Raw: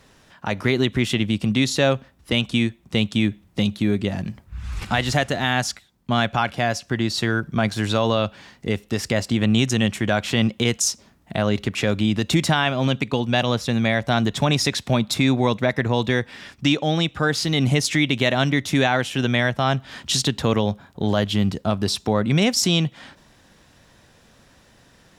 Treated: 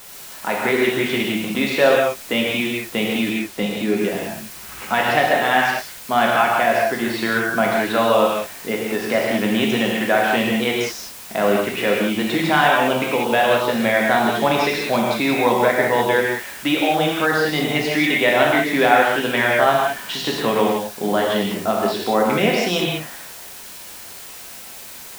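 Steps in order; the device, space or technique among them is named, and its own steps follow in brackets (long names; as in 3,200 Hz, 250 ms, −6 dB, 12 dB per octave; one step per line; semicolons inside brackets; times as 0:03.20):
wax cylinder (band-pass filter 360–2,300 Hz; tape wow and flutter; white noise bed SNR 18 dB)
0:03.30–0:03.97: high-shelf EQ 7,800 Hz −5 dB
reverb whose tail is shaped and stops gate 220 ms flat, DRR −3 dB
level +3 dB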